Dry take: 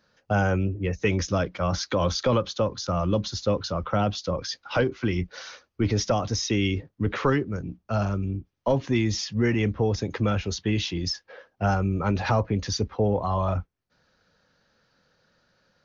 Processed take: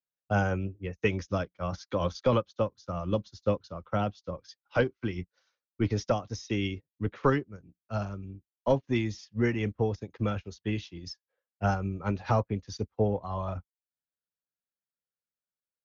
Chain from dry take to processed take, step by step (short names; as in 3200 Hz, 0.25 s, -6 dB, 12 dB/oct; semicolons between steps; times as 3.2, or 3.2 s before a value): upward expander 2.5:1, over -45 dBFS